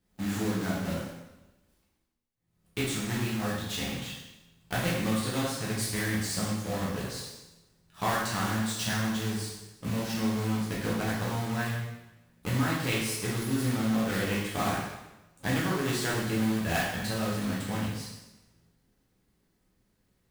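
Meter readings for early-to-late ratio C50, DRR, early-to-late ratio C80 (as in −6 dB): 1.0 dB, −7.0 dB, 4.0 dB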